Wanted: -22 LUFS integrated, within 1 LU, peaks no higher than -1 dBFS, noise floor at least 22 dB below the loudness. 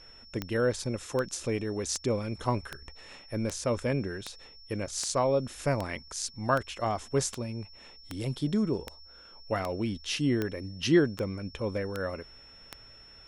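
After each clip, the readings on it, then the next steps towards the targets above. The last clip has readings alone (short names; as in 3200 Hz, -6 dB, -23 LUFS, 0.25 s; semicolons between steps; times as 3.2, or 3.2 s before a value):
clicks 17; steady tone 5400 Hz; tone level -51 dBFS; loudness -31.0 LUFS; peak -11.5 dBFS; loudness target -22.0 LUFS
-> de-click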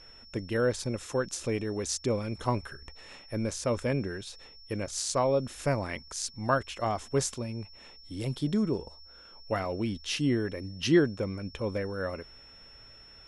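clicks 0; steady tone 5400 Hz; tone level -51 dBFS
-> notch 5400 Hz, Q 30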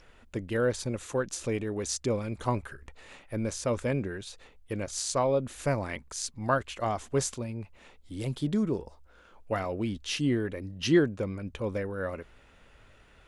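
steady tone none; loudness -31.0 LUFS; peak -11.5 dBFS; loudness target -22.0 LUFS
-> gain +9 dB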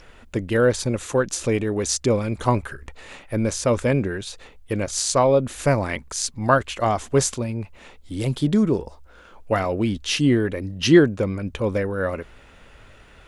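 loudness -22.0 LUFS; peak -2.5 dBFS; noise floor -49 dBFS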